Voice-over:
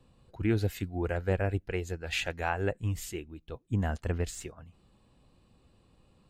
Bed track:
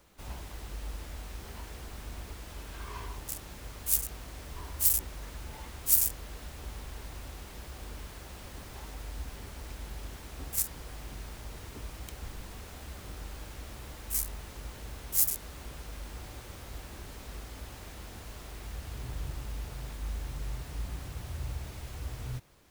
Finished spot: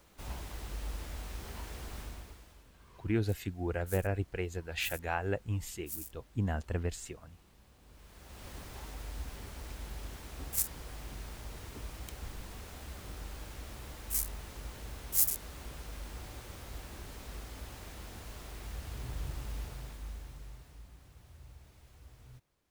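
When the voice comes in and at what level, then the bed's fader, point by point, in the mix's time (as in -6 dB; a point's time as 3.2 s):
2.65 s, -3.0 dB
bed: 2 s 0 dB
2.72 s -18.5 dB
7.8 s -18.5 dB
8.48 s -1.5 dB
19.61 s -1.5 dB
20.91 s -16.5 dB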